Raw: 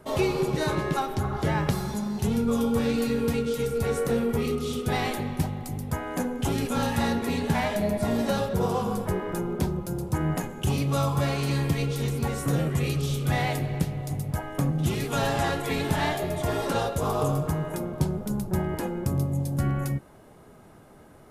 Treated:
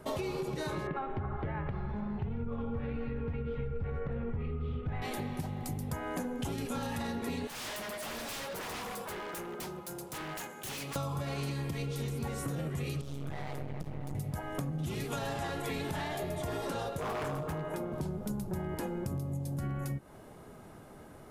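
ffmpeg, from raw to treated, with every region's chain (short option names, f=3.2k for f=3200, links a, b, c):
-filter_complex "[0:a]asettb=1/sr,asplit=3[a][b][c];[a]atrim=end=0.874[d];[b]atrim=start=0.87:end=5.02,asetpts=PTS-STARTPTS,afade=t=in:d=0.004:c=qsin,afade=t=out:st=4.146:d=0.004:c=qsin,asubboost=boost=10.5:cutoff=95,lowpass=f=2.4k:w=0.5412,lowpass=f=2.4k:w=1.3066,asoftclip=type=hard:threshold=-13dB[e];[c]atrim=start=5.016[f];[d][e]acrossfade=d=0.004:c1=hsin:c2=qsin[g];[g][f]acrossfade=d=0.004:c1=qsin:c2=hsin,asettb=1/sr,asplit=3[h][i][j];[h]atrim=end=7.474[k];[i]atrim=start=7.47:end=10.96,asetpts=PTS-STARTPTS,afade=t=in:d=0.004:c=qsin,afade=t=out:st=3.486:d=0.004:c=qsin,highpass=f=1.1k:p=1,aeval=exprs='0.0178*(abs(mod(val(0)/0.0178+3,4)-2)-1)':c=same[l];[j]atrim=start=10.956[m];[k][l]acrossfade=d=0.004:c1=hsin:c2=qsin[n];[n][m]acrossfade=d=0.004:c1=qsin:c2=hsin,asettb=1/sr,asplit=3[o][p][q];[o]atrim=end=13.014[r];[p]atrim=start=13.01:end=14.15,asetpts=PTS-STARTPTS,afade=t=in:d=0.004:c=qsin,afade=t=out:st=1.136:d=0.004:c=qsin,aeval=exprs='max(val(0),0)':c=same,acompressor=threshold=-30dB:ratio=4:attack=3.2:release=140:knee=1:detection=peak,highshelf=f=2.4k:g=-9[s];[q]atrim=start=14.146[t];[r][s]acrossfade=d=0.004:c1=hsin:c2=qsin[u];[u][t]acrossfade=d=0.004:c1=qsin:c2=hsin,asettb=1/sr,asplit=3[v][w][x];[v]atrim=end=16.974[y];[w]atrim=start=16.97:end=17.92,asetpts=PTS-STARTPTS,afade=t=in:d=0.004:c=qsin,afade=t=out:st=0.946:d=0.004:c=qsin,bass=f=250:g=-6,treble=f=4k:g=-7,aeval=exprs='0.0631*(abs(mod(val(0)/0.0631+3,4)-2)-1)':c=same[z];[x]atrim=start=17.916[aa];[y][z]acrossfade=d=0.004:c1=hsin:c2=qsin[ab];[ab][aa]acrossfade=d=0.004:c1=qsin:c2=hsin,alimiter=limit=-18.5dB:level=0:latency=1:release=43,acompressor=threshold=-33dB:ratio=6"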